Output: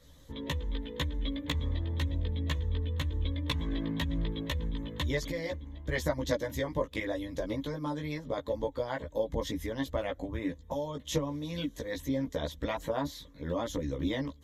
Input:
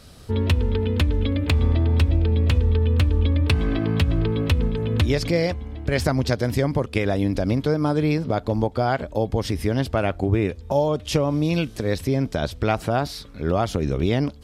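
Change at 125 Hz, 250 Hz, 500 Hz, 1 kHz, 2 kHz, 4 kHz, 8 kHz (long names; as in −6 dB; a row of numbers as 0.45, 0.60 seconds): −14.5, −11.5, −10.5, −12.0, −9.0, −7.5, −7.0 decibels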